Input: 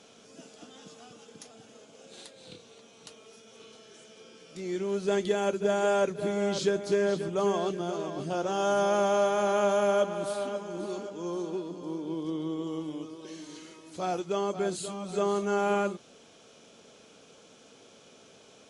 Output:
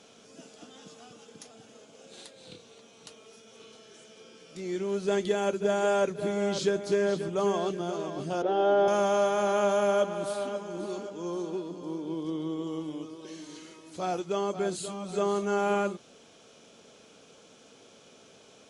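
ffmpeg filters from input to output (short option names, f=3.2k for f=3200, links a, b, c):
-filter_complex "[0:a]asettb=1/sr,asplit=3[a][b][c];[a]atrim=end=8.424[d];[b]atrim=start=8.42:end=8.88,asetpts=PTS-STARTPTS,afade=t=in:d=0.004:c=qsin,afade=t=out:st=0.456:d=0.004:c=qsin,highpass=170,equalizer=f=180:t=q:w=4:g=-4,equalizer=f=300:t=q:w=4:g=7,equalizer=f=440:t=q:w=4:g=8,equalizer=f=720:t=q:w=4:g=6,equalizer=f=1.1k:t=q:w=4:g=-8,equalizer=f=2.5k:t=q:w=4:g=-6,lowpass=f=3.7k:w=0.5412,lowpass=f=3.7k:w=1.3066[e];[c]atrim=start=8.876[f];[d][e]acrossfade=d=0.004:c1=hsin:c2=qsin[g];[g][f]acrossfade=d=0.004:c1=qsin:c2=hsin"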